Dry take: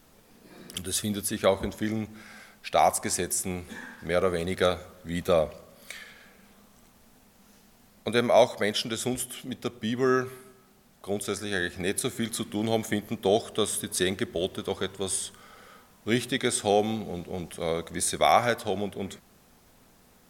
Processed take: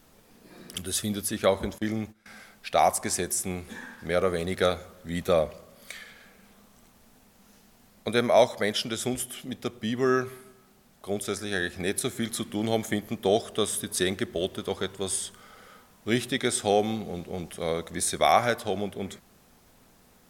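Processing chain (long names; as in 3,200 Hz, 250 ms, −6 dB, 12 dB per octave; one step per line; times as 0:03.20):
0:01.78–0:02.26: noise gate −37 dBFS, range −19 dB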